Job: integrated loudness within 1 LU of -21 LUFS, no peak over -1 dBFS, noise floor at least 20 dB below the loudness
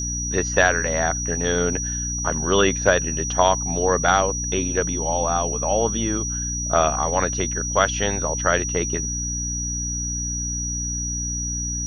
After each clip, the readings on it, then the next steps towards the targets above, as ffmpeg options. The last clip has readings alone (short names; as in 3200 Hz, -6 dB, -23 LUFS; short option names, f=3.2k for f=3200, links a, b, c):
hum 60 Hz; harmonics up to 300 Hz; hum level -27 dBFS; steady tone 5800 Hz; tone level -26 dBFS; loudness -21.5 LUFS; peak -1.5 dBFS; loudness target -21.0 LUFS
-> -af "bandreject=f=60:t=h:w=4,bandreject=f=120:t=h:w=4,bandreject=f=180:t=h:w=4,bandreject=f=240:t=h:w=4,bandreject=f=300:t=h:w=4"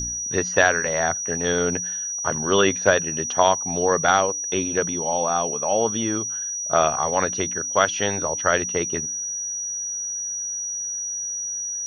hum none; steady tone 5800 Hz; tone level -26 dBFS
-> -af "bandreject=f=5.8k:w=30"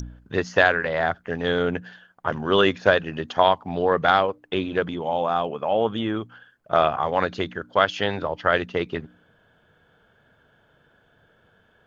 steady tone none; loudness -23.0 LUFS; peak -2.0 dBFS; loudness target -21.0 LUFS
-> -af "volume=2dB,alimiter=limit=-1dB:level=0:latency=1"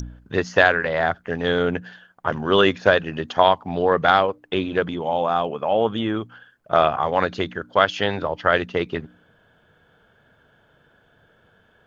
loudness -21.0 LUFS; peak -1.0 dBFS; noise floor -60 dBFS